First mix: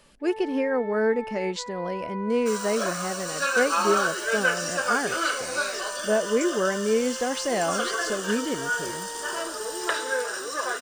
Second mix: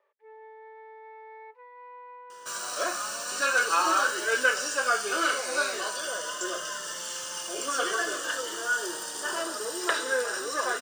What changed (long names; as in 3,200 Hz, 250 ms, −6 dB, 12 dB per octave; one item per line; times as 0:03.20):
speech: muted
first sound −10.0 dB